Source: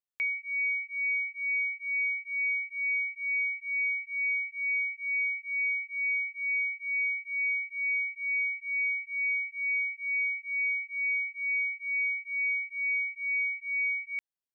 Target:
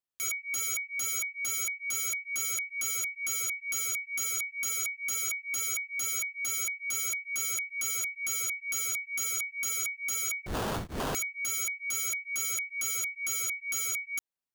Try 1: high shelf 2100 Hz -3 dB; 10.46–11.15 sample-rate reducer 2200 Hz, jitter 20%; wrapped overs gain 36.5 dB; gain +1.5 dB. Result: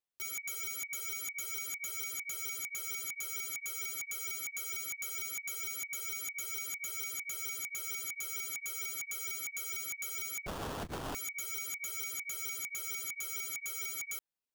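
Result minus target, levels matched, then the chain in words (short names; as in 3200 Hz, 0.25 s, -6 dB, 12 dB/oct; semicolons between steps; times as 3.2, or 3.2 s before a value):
wrapped overs: distortion -21 dB
high shelf 2100 Hz -3 dB; 10.46–11.15 sample-rate reducer 2200 Hz, jitter 20%; wrapped overs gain 30 dB; gain +1.5 dB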